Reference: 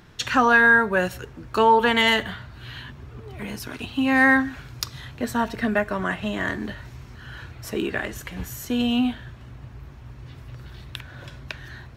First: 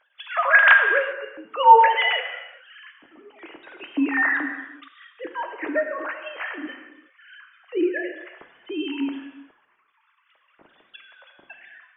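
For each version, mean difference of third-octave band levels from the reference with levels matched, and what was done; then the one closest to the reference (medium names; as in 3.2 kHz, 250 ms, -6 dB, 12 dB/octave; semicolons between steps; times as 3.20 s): 14.0 dB: formants replaced by sine waves; gated-style reverb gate 430 ms falling, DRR 5 dB; trim -1 dB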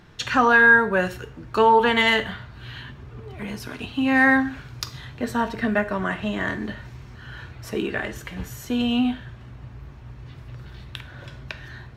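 1.5 dB: treble shelf 7.6 kHz -8 dB; gated-style reverb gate 160 ms falling, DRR 10.5 dB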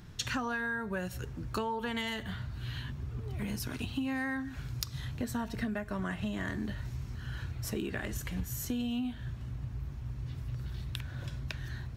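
6.5 dB: tone controls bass +10 dB, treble +6 dB; compression 12:1, threshold -24 dBFS, peak gain reduction 13.5 dB; trim -7 dB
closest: second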